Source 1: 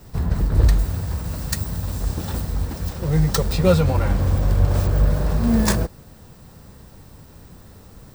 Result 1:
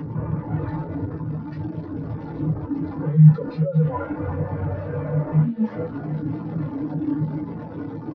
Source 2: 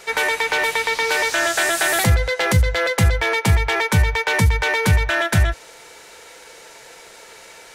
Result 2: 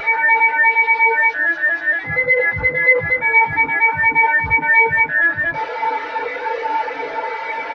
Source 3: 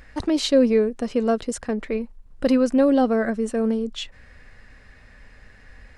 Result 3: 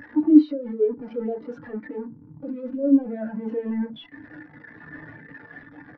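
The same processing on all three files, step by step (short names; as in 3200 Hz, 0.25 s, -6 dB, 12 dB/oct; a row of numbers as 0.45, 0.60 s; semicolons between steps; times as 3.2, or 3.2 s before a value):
delta modulation 32 kbps, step -20 dBFS; HPF 120 Hz 24 dB/oct; negative-ratio compressor -22 dBFS, ratio -0.5; limiter -16.5 dBFS; overdrive pedal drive 28 dB, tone 3100 Hz, clips at -16.5 dBFS; echo 71 ms -21.5 dB; FDN reverb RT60 0.3 s, low-frequency decay 1.55×, high-frequency decay 0.25×, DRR 5.5 dB; spectral expander 2.5:1; normalise peaks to -3 dBFS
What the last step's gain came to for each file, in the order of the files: +7.0, +8.0, +6.5 dB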